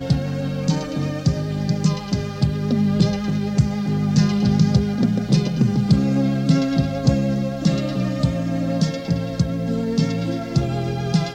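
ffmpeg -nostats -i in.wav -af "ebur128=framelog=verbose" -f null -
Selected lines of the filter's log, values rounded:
Integrated loudness:
  I:         -20.7 LUFS
  Threshold: -30.7 LUFS
Loudness range:
  LRA:         3.5 LU
  Threshold: -40.2 LUFS
  LRA low:   -22.2 LUFS
  LRA high:  -18.7 LUFS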